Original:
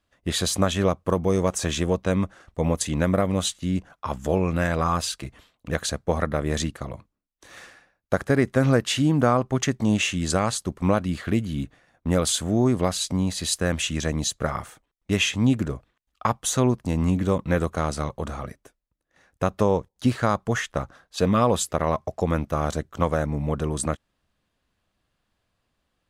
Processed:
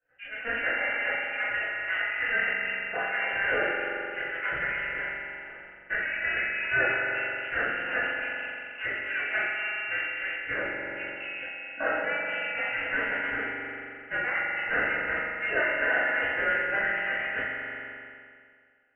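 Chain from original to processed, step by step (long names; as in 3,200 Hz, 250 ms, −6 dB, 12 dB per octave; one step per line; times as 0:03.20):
gate on every frequency bin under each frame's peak −30 dB strong
mains-hum notches 50/100 Hz
dynamic equaliser 250 Hz, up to −3 dB, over −36 dBFS, Q 5.1
downward compressor 2.5 to 1, threshold −28 dBFS, peak gain reduction 9 dB
phase-vocoder stretch with locked phases 1.7×
formant filter a
high-frequency loss of the air 370 metres
echo that builds up and dies away 101 ms, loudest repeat 5, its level −10 dB
four-comb reverb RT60 1.2 s, combs from 33 ms, DRR −10 dB
wrong playback speed 33 rpm record played at 78 rpm
voice inversion scrambler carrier 3,200 Hz
level that may fall only so fast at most 30 dB per second
level +2.5 dB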